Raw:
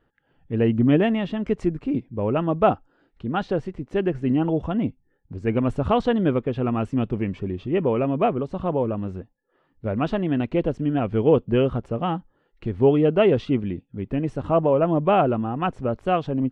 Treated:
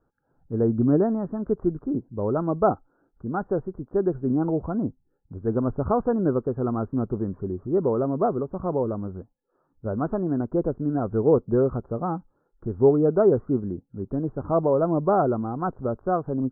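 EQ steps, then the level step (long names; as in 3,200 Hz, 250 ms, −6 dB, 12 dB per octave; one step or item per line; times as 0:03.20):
Butterworth low-pass 1,500 Hz 72 dB per octave
dynamic equaliser 390 Hz, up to +4 dB, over −36 dBFS, Q 3.4
−3.0 dB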